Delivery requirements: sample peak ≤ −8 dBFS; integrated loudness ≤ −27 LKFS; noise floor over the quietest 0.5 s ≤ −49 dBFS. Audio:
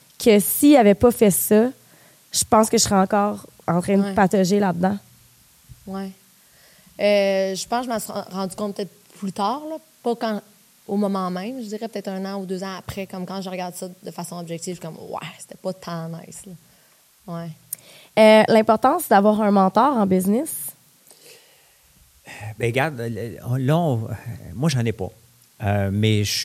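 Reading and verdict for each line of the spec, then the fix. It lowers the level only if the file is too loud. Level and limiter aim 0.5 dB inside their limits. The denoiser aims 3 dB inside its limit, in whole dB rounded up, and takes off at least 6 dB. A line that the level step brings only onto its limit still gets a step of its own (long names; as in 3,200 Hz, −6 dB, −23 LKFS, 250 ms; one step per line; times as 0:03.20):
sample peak −4.0 dBFS: out of spec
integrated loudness −20.0 LKFS: out of spec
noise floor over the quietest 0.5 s −56 dBFS: in spec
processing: level −7.5 dB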